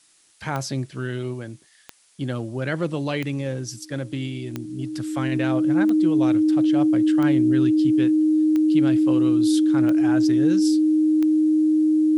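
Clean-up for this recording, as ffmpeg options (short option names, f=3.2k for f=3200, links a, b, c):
-af "adeclick=t=4,bandreject=f=310:w=30,agate=range=-21dB:threshold=-33dB"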